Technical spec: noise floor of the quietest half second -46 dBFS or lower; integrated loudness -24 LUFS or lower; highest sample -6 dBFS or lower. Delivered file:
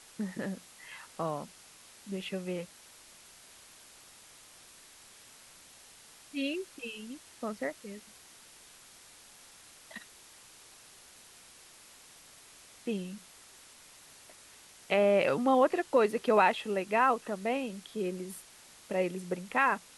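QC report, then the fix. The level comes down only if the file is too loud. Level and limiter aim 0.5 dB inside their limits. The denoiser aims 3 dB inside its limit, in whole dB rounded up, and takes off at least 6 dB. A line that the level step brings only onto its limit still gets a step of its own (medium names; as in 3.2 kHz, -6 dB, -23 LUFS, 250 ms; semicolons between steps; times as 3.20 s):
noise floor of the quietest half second -56 dBFS: pass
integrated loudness -31.5 LUFS: pass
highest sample -11.5 dBFS: pass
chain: none needed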